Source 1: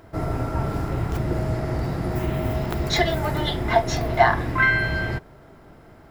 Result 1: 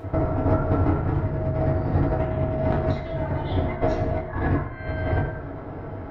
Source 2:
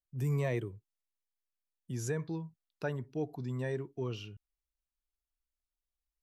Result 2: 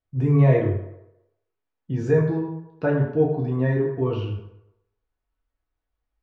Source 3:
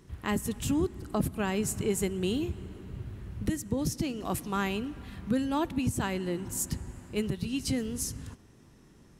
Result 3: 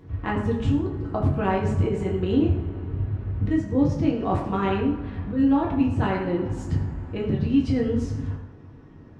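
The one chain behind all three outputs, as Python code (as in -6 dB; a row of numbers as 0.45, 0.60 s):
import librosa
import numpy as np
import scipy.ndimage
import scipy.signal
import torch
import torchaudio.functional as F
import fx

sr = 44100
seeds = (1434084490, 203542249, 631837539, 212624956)

y = fx.over_compress(x, sr, threshold_db=-29.0, ratio=-0.5)
y = fx.spacing_loss(y, sr, db_at_10k=38)
y = fx.rev_fdn(y, sr, rt60_s=0.87, lf_ratio=0.75, hf_ratio=0.65, size_ms=63.0, drr_db=-3.5)
y = y * 10.0 ** (-24 / 20.0) / np.sqrt(np.mean(np.square(y)))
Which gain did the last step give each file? +3.0, +11.5, +6.0 dB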